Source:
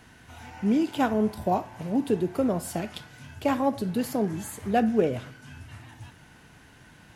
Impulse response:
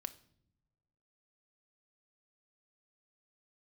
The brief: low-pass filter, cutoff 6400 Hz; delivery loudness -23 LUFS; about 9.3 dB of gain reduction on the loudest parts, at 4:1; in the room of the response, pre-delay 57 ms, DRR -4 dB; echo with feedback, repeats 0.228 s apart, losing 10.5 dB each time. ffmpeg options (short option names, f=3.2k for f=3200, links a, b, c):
-filter_complex "[0:a]lowpass=6.4k,acompressor=threshold=-28dB:ratio=4,aecho=1:1:228|456|684:0.299|0.0896|0.0269,asplit=2[a][b];[1:a]atrim=start_sample=2205,adelay=57[c];[b][c]afir=irnorm=-1:irlink=0,volume=7dB[d];[a][d]amix=inputs=2:normalize=0,volume=4dB"